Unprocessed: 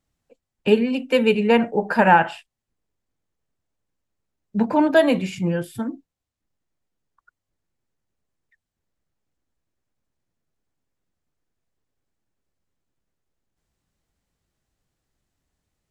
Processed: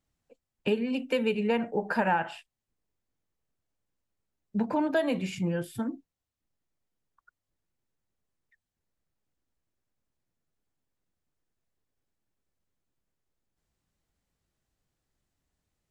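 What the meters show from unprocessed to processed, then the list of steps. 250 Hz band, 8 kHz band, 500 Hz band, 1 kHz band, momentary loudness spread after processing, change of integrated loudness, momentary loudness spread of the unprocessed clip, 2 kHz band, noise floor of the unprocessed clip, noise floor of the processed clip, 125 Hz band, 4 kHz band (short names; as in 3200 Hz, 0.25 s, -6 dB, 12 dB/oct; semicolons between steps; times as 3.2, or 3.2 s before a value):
-8.5 dB, -6.0 dB, -10.0 dB, -11.5 dB, 9 LU, -10.0 dB, 13 LU, -10.0 dB, -84 dBFS, under -85 dBFS, -7.5 dB, -9.0 dB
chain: compressor 2.5:1, threshold -22 dBFS, peak gain reduction 9 dB; gain -4 dB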